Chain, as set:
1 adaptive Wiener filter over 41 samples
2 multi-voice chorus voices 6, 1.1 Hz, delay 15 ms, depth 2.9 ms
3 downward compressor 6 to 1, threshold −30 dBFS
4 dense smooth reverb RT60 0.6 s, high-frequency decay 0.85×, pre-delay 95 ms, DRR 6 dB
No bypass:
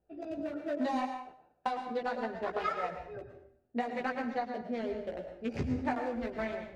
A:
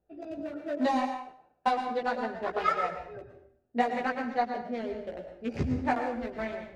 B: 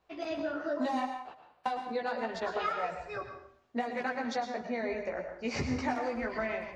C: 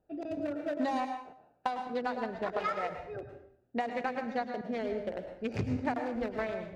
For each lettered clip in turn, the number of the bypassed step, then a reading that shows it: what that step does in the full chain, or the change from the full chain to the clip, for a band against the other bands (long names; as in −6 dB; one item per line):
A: 3, average gain reduction 2.0 dB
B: 1, 4 kHz band +4.0 dB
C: 2, change in crest factor +2.0 dB